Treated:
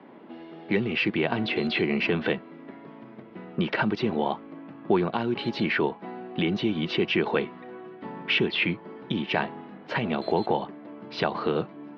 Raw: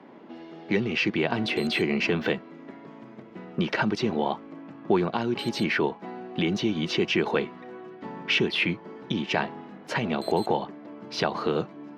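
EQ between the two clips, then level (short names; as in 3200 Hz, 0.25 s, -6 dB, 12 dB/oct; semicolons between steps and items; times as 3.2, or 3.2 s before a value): LPF 4100 Hz 24 dB/oct; 0.0 dB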